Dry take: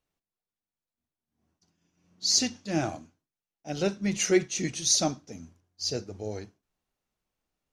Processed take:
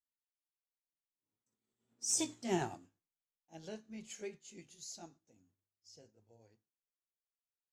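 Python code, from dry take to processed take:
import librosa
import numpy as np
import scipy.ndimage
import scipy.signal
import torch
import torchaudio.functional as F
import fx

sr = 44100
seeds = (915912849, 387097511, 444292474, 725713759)

y = fx.pitch_heads(x, sr, semitones=3.0)
y = fx.doppler_pass(y, sr, speed_mps=32, closest_m=7.9, pass_at_s=2.43)
y = y * librosa.db_to_amplitude(-4.5)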